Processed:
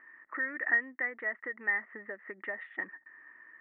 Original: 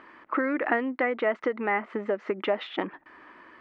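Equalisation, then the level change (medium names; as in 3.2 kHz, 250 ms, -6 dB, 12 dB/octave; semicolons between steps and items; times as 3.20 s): four-pole ladder low-pass 1.9 kHz, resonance 90%; -5.0 dB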